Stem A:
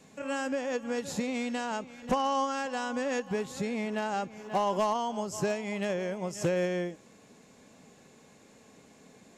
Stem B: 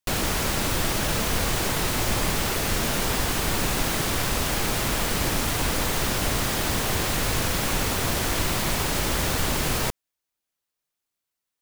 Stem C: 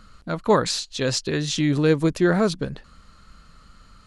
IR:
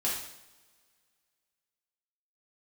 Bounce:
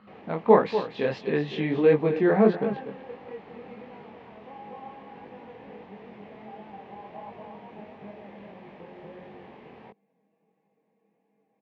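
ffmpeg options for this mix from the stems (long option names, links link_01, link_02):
-filter_complex "[0:a]aecho=1:1:6.2:0.49,adelay=2350,volume=-8dB,asplit=2[link_01][link_02];[link_02]volume=-11.5dB[link_03];[1:a]volume=-19.5dB[link_04];[2:a]tiltshelf=frequency=710:gain=-3.5,volume=0dB,asplit=3[link_05][link_06][link_07];[link_06]volume=-11.5dB[link_08];[link_07]apad=whole_len=517544[link_09];[link_01][link_09]sidechaingate=range=-13dB:threshold=-48dB:ratio=16:detection=peak[link_10];[link_03][link_08]amix=inputs=2:normalize=0,aecho=0:1:242:1[link_11];[link_10][link_04][link_05][link_11]amix=inputs=4:normalize=0,flanger=delay=19.5:depth=5.9:speed=1.5,highpass=160,equalizer=frequency=210:width_type=q:width=4:gain=9,equalizer=frequency=440:width_type=q:width=4:gain=8,equalizer=frequency=790:width_type=q:width=4:gain=8,equalizer=frequency=1400:width_type=q:width=4:gain=-10,lowpass=frequency=2500:width=0.5412,lowpass=frequency=2500:width=1.3066"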